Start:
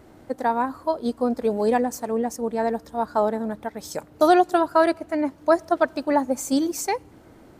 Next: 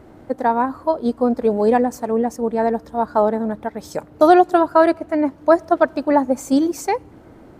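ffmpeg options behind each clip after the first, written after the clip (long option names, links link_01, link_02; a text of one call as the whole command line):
ffmpeg -i in.wav -af "highshelf=frequency=2700:gain=-9.5,volume=5.5dB" out.wav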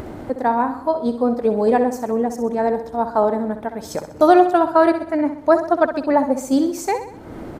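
ffmpeg -i in.wav -filter_complex "[0:a]acompressor=mode=upward:threshold=-21dB:ratio=2.5,asplit=2[link_01][link_02];[link_02]aecho=0:1:64|128|192|256|320:0.316|0.155|0.0759|0.0372|0.0182[link_03];[link_01][link_03]amix=inputs=2:normalize=0,volume=-1dB" out.wav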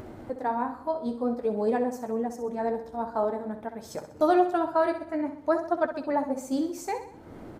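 ffmpeg -i in.wav -af "flanger=delay=8.2:depth=5.6:regen=-47:speed=0.51:shape=sinusoidal,volume=-6dB" out.wav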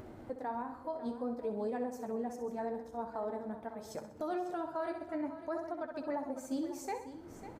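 ffmpeg -i in.wav -af "alimiter=limit=-21.5dB:level=0:latency=1:release=128,aecho=1:1:549:0.224,volume=-7dB" out.wav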